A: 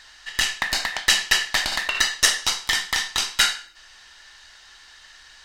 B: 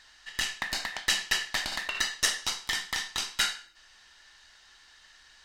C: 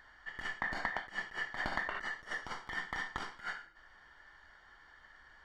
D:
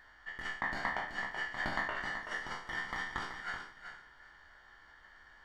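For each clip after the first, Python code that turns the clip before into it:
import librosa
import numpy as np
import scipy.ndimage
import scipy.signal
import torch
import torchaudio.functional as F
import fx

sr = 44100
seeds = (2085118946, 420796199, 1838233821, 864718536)

y1 = fx.peak_eq(x, sr, hz=210.0, db=3.5, octaves=1.7)
y1 = y1 * 10.0 ** (-8.5 / 20.0)
y2 = fx.over_compress(y1, sr, threshold_db=-32.0, ratio=-0.5)
y2 = scipy.signal.savgol_filter(y2, 41, 4, mode='constant')
y3 = fx.spec_trails(y2, sr, decay_s=0.45)
y3 = fx.echo_feedback(y3, sr, ms=379, feedback_pct=17, wet_db=-8.5)
y3 = y3 * 10.0 ** (-1.5 / 20.0)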